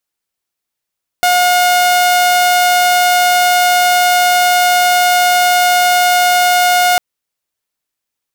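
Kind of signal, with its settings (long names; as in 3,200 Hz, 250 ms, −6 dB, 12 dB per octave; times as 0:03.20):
tone saw 718 Hz −6 dBFS 5.75 s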